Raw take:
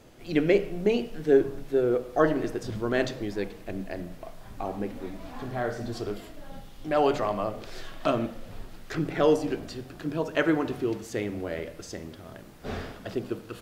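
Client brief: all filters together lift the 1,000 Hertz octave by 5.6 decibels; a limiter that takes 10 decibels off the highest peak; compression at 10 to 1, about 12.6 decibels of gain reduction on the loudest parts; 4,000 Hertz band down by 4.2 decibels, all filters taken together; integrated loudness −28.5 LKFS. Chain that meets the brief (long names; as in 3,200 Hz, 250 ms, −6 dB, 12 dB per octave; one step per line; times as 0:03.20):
parametric band 1,000 Hz +8 dB
parametric band 4,000 Hz −6.5 dB
downward compressor 10 to 1, threshold −26 dBFS
level +8 dB
brickwall limiter −16 dBFS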